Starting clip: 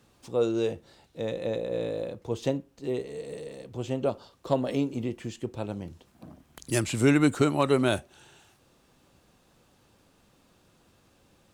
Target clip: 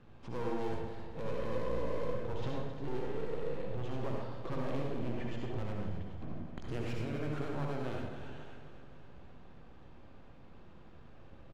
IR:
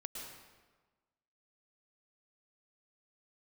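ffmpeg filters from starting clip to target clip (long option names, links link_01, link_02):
-filter_complex "[0:a]aeval=exprs='if(lt(val(0),0),0.447*val(0),val(0))':channel_layout=same,lowpass=2300,lowshelf=frequency=100:gain=8.5,asplit=2[link_01][link_02];[link_02]alimiter=limit=-21.5dB:level=0:latency=1,volume=0dB[link_03];[link_01][link_03]amix=inputs=2:normalize=0,aeval=exprs='clip(val(0),-1,0.0316)':channel_layout=same,acompressor=threshold=-34dB:ratio=6,aecho=1:1:263|526|789|1052|1315|1578|1841:0.251|0.148|0.0874|0.0516|0.0304|0.018|0.0106[link_04];[1:a]atrim=start_sample=2205,asetrate=74970,aresample=44100[link_05];[link_04][link_05]afir=irnorm=-1:irlink=0,volume=6.5dB"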